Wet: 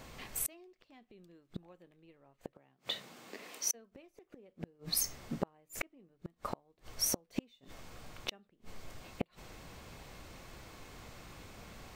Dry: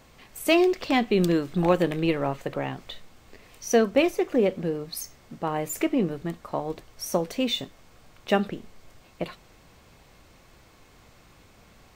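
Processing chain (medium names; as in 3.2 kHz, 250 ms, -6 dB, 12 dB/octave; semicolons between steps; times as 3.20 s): 2.53–3.73 s: high-pass 88 Hz -> 280 Hz 24 dB/octave; inverted gate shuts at -23 dBFS, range -40 dB; trim +3 dB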